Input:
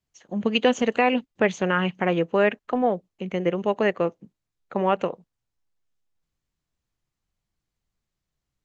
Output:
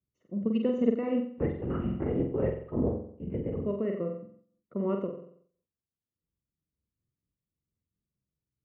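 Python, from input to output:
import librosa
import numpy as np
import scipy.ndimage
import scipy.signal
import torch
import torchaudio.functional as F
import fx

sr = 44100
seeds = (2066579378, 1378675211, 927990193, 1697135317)

y = scipy.signal.lfilter(np.full(54, 1.0 / 54), 1.0, x)
y = fx.lpc_vocoder(y, sr, seeds[0], excitation='whisper', order=10, at=(1.34, 3.65))
y = scipy.signal.sosfilt(scipy.signal.butter(2, 71.0, 'highpass', fs=sr, output='sos'), y)
y = fx.room_flutter(y, sr, wall_m=7.8, rt60_s=0.57)
y = fx.am_noise(y, sr, seeds[1], hz=5.7, depth_pct=60)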